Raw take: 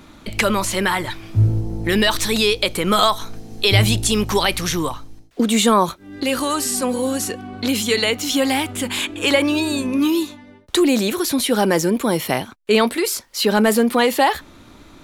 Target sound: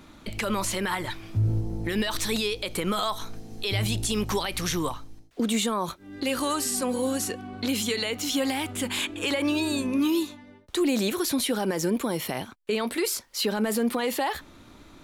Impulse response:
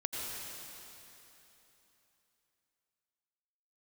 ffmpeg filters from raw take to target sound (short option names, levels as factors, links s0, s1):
-af "alimiter=limit=0.266:level=0:latency=1:release=76,volume=0.531"